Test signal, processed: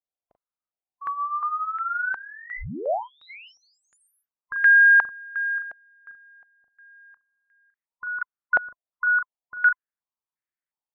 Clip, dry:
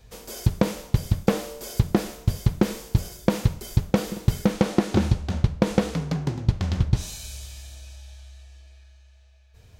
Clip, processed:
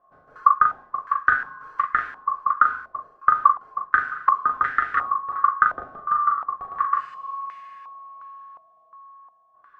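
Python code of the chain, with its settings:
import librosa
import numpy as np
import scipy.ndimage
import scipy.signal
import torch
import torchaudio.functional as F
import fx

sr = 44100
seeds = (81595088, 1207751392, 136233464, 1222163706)

y = fx.band_swap(x, sr, width_hz=1000)
y = fx.doubler(y, sr, ms=39.0, db=-5.5)
y = fx.filter_held_lowpass(y, sr, hz=2.8, low_hz=670.0, high_hz=1900.0)
y = y * 10.0 ** (-7.5 / 20.0)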